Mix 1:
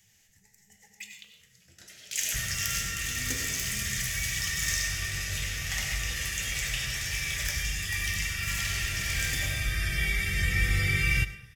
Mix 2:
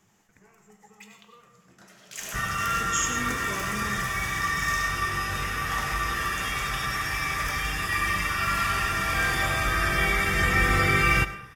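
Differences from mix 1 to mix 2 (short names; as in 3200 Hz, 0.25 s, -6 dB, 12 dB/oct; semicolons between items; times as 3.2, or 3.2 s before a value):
speech: remove Gaussian blur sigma 18 samples; first sound -9.5 dB; master: remove EQ curve 110 Hz 0 dB, 290 Hz -14 dB, 540 Hz -14 dB, 1100 Hz -25 dB, 2000 Hz -4 dB, 4300 Hz -2 dB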